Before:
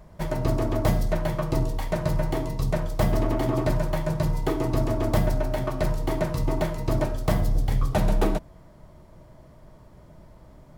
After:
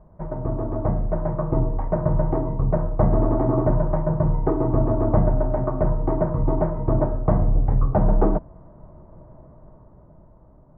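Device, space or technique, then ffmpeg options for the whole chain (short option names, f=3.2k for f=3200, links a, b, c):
action camera in a waterproof case: -af "lowpass=f=1.2k:w=0.5412,lowpass=f=1.2k:w=1.3066,dynaudnorm=f=190:g=13:m=7dB,volume=-2dB" -ar 16000 -c:a aac -b:a 64k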